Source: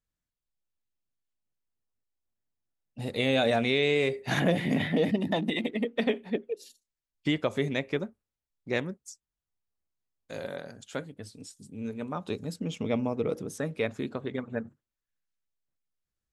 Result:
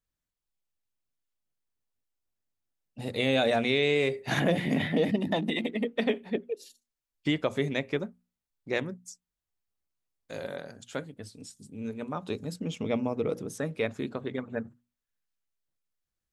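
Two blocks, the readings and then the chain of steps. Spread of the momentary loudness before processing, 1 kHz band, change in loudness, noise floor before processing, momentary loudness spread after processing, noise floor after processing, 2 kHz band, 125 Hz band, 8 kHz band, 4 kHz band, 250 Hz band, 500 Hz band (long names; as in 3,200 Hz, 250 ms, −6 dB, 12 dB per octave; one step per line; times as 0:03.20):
16 LU, 0.0 dB, 0.0 dB, below −85 dBFS, 16 LU, below −85 dBFS, 0.0 dB, −1.0 dB, 0.0 dB, 0.0 dB, −0.5 dB, 0.0 dB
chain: mains-hum notches 60/120/180/240 Hz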